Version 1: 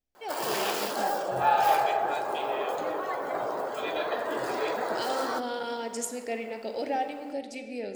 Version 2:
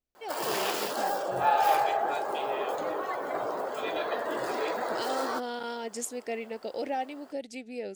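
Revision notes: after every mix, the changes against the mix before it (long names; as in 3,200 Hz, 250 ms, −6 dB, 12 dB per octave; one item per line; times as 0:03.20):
reverb: off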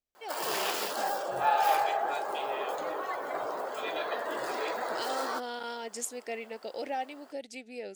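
master: add low-shelf EQ 430 Hz −8 dB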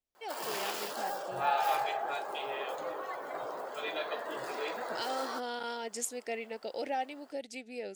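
background −5.0 dB
master: add parametric band 150 Hz +4 dB 0.33 octaves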